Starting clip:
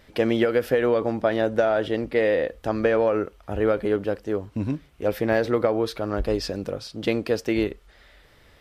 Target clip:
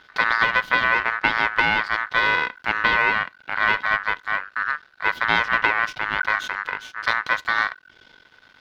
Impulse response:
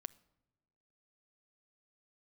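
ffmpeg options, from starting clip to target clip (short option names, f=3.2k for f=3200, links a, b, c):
-af "aeval=exprs='max(val(0),0)':c=same,aeval=exprs='val(0)*sin(2*PI*1500*n/s)':c=same,highshelf=f=6k:t=q:w=1.5:g=-10.5,volume=6dB"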